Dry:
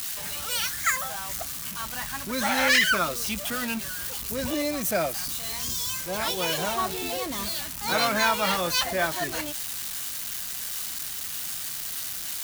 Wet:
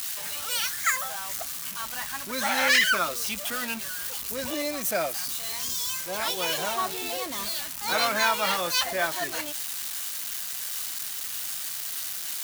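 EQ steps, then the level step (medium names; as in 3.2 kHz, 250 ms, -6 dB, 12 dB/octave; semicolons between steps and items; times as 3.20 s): bass shelf 240 Hz -12 dB; 0.0 dB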